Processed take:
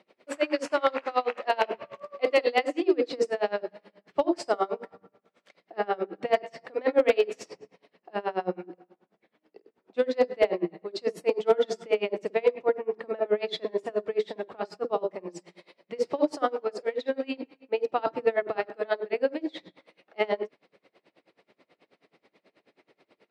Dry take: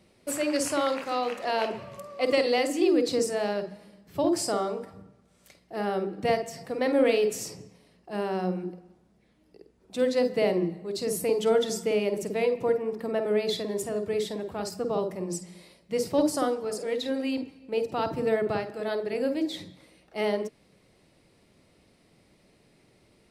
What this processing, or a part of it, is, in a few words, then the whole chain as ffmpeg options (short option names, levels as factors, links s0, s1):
helicopter radio: -af "highpass=380,lowpass=3000,aeval=exprs='val(0)*pow(10,-27*(0.5-0.5*cos(2*PI*9.3*n/s))/20)':c=same,asoftclip=type=hard:threshold=0.1,volume=2.51"